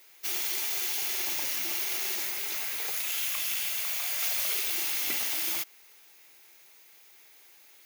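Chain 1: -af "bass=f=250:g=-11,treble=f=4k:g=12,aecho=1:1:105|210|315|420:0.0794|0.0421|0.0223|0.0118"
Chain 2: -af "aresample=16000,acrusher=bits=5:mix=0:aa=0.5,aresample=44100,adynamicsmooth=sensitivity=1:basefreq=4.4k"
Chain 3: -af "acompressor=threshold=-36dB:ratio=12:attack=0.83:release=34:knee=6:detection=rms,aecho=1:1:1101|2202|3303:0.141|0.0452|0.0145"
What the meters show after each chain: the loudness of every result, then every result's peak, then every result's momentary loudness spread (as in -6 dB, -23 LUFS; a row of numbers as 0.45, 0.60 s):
-17.0, -37.5, -38.0 LUFS; -5.0, -24.0, -29.0 dBFS; 3, 4, 14 LU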